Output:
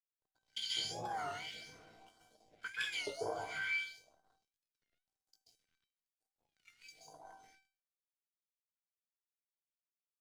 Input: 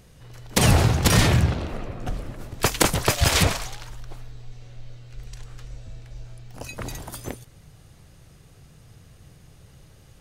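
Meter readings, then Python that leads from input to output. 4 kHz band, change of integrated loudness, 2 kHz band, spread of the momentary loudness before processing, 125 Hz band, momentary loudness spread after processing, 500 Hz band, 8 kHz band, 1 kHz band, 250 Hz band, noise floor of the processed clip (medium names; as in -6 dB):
-14.5 dB, -17.5 dB, -12.5 dB, 20 LU, -38.5 dB, 22 LU, -18.5 dB, -25.0 dB, -16.5 dB, -31.0 dB, under -85 dBFS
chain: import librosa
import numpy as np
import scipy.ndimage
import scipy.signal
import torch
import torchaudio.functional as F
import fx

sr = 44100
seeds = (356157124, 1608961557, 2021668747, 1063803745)

y = fx.ripple_eq(x, sr, per_octave=1.8, db=12)
y = y + 10.0 ** (-21.5 / 20.0) * np.pad(y, (int(365 * sr / 1000.0), 0))[:len(y)]
y = fx.filter_lfo_bandpass(y, sr, shape='saw_up', hz=1.3, low_hz=490.0, high_hz=5900.0, q=6.6)
y = scipy.signal.sosfilt(scipy.signal.butter(2, 110.0, 'highpass', fs=sr, output='sos'), y)
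y = fx.notch(y, sr, hz=520.0, q=12.0)
y = fx.doubler(y, sr, ms=18.0, db=-5.5)
y = fx.rev_plate(y, sr, seeds[0], rt60_s=0.7, hf_ratio=0.55, predelay_ms=120, drr_db=-5.0)
y = np.sign(y) * np.maximum(np.abs(y) - 10.0 ** (-51.5 / 20.0), 0.0)
y = fx.high_shelf(y, sr, hz=6900.0, db=-6.0)
y = fx.phaser_stages(y, sr, stages=2, low_hz=670.0, high_hz=2400.0, hz=1.0, feedback_pct=25)
y = fx.comb_fb(y, sr, f0_hz=780.0, decay_s=0.34, harmonics='all', damping=0.0, mix_pct=90)
y = fx.record_warp(y, sr, rpm=33.33, depth_cents=160.0)
y = y * librosa.db_to_amplitude(8.5)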